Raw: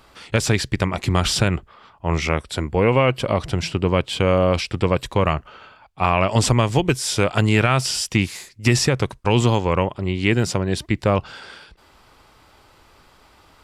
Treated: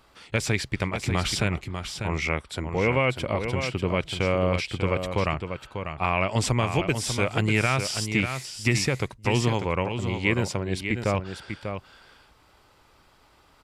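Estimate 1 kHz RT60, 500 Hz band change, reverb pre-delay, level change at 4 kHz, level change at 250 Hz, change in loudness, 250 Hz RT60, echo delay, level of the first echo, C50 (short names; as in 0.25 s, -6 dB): none, -6.5 dB, none, -6.0 dB, -6.0 dB, -6.0 dB, none, 0.594 s, -7.5 dB, none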